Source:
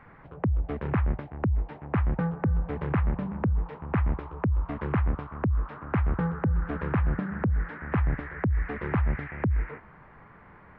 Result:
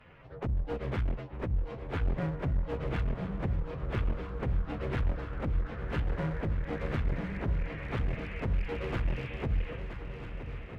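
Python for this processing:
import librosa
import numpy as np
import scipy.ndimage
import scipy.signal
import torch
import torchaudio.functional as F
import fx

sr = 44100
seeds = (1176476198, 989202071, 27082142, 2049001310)

y = fx.partial_stretch(x, sr, pct=113)
y = fx.graphic_eq_10(y, sr, hz=(250, 500, 1000), db=(-3, 5, -3))
y = fx.clip_asym(y, sr, top_db=-35.0, bottom_db=-21.5)
y = fx.echo_swing(y, sr, ms=1296, ratio=3, feedback_pct=60, wet_db=-11)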